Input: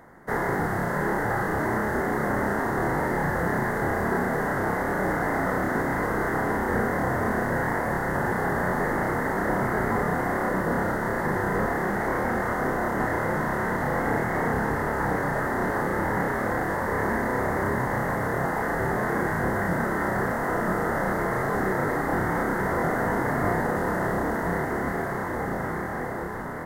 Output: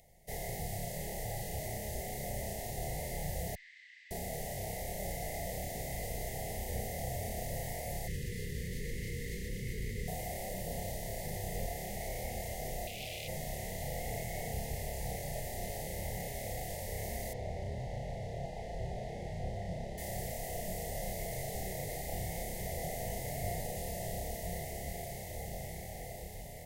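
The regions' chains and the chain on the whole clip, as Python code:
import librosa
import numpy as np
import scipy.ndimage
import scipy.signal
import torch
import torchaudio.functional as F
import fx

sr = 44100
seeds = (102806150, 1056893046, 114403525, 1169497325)

y = fx.chain(x, sr, fx.brickwall_bandpass(low_hz=1200.0, high_hz=8500.0),
    fx.air_absorb(metres=370.0), at=(3.55, 4.11))
y = fx.chain(y, sr, fx.cheby1_bandstop(low_hz=480.0, high_hz=1400.0, order=4),
    fx.high_shelf(hz=7000.0, db=-12.0),
    fx.env_flatten(amount_pct=100), at=(8.07, 10.08))
y = fx.chain(y, sr, fx.notch_comb(f0_hz=910.0),
    fx.overload_stage(gain_db=28.0), at=(12.87, 13.28))
y = fx.chain(y, sr, fx.lowpass(hz=3300.0, slope=12),
    fx.peak_eq(hz=2000.0, db=-5.5, octaves=1.2), at=(17.33, 19.98))
y = scipy.signal.sosfilt(scipy.signal.ellip(3, 1.0, 60, [690.0, 2400.0], 'bandstop', fs=sr, output='sos'), y)
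y = fx.tone_stack(y, sr, knobs='10-0-10')
y = y * librosa.db_to_amplitude(4.0)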